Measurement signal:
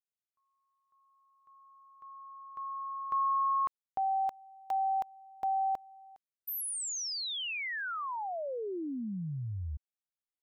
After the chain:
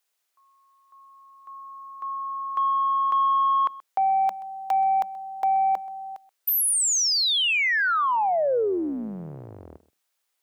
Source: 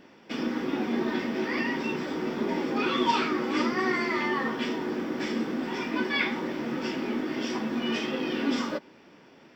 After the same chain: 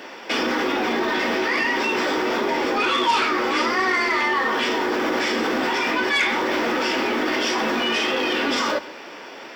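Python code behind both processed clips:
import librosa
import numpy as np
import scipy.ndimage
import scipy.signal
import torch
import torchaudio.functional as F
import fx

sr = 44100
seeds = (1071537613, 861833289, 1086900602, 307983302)

p1 = fx.octave_divider(x, sr, octaves=2, level_db=-4.0)
p2 = scipy.signal.sosfilt(scipy.signal.butter(2, 500.0, 'highpass', fs=sr, output='sos'), p1)
p3 = fx.over_compress(p2, sr, threshold_db=-40.0, ratio=-1.0)
p4 = p2 + F.gain(torch.from_numpy(p3), 2.0).numpy()
p5 = 10.0 ** (-21.0 / 20.0) * np.tanh(p4 / 10.0 ** (-21.0 / 20.0))
p6 = p5 + 10.0 ** (-20.0 / 20.0) * np.pad(p5, (int(129 * sr / 1000.0), 0))[:len(p5)]
y = F.gain(torch.from_numpy(p6), 8.5).numpy()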